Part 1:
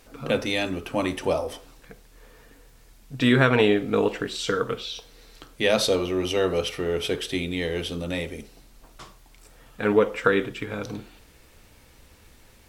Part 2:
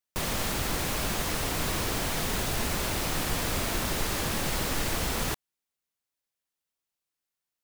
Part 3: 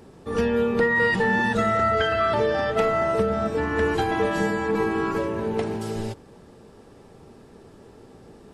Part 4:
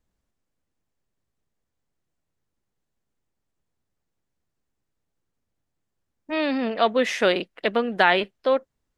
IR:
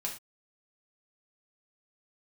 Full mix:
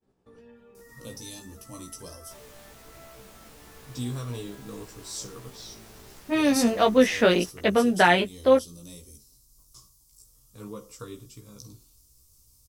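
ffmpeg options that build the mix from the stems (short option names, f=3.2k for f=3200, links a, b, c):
-filter_complex "[0:a]firequalizer=gain_entry='entry(110,0);entry(160,-8);entry(780,-21);entry(1100,-8);entry(1600,-28);entry(5200,7);entry(11000,11)':delay=0.05:min_phase=1,adelay=750,volume=-3.5dB[a];[1:a]adelay=2150,volume=-18.5dB[b];[2:a]acompressor=threshold=-30dB:ratio=6,alimiter=level_in=5dB:limit=-24dB:level=0:latency=1:release=416,volume=-5dB,volume=-12.5dB[c];[3:a]equalizer=f=160:t=o:w=2.1:g=8,volume=2dB[d];[a][b][c][d]amix=inputs=4:normalize=0,agate=range=-33dB:threshold=-52dB:ratio=3:detection=peak,flanger=delay=15:depth=2.5:speed=1.3"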